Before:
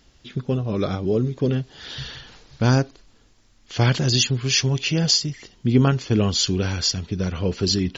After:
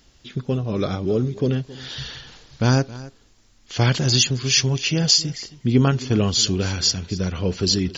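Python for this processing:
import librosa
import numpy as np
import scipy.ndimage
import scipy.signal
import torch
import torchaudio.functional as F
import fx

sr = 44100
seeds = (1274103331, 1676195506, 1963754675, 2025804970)

y = fx.high_shelf(x, sr, hz=5900.0, db=6.0)
y = y + 10.0 ** (-18.5 / 20.0) * np.pad(y, (int(269 * sr / 1000.0), 0))[:len(y)]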